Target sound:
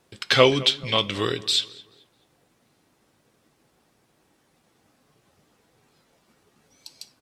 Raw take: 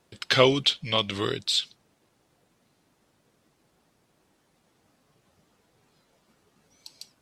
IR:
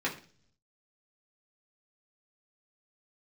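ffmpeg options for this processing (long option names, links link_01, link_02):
-filter_complex "[0:a]asplit=2[link_01][link_02];[link_02]adelay=216,lowpass=frequency=2800:poles=1,volume=-19.5dB,asplit=2[link_03][link_04];[link_04]adelay=216,lowpass=frequency=2800:poles=1,volume=0.43,asplit=2[link_05][link_06];[link_06]adelay=216,lowpass=frequency=2800:poles=1,volume=0.43[link_07];[link_01][link_03][link_05][link_07]amix=inputs=4:normalize=0,asplit=2[link_08][link_09];[1:a]atrim=start_sample=2205,highshelf=frequency=3800:gain=11.5[link_10];[link_09][link_10]afir=irnorm=-1:irlink=0,volume=-19.5dB[link_11];[link_08][link_11]amix=inputs=2:normalize=0,volume=1.5dB"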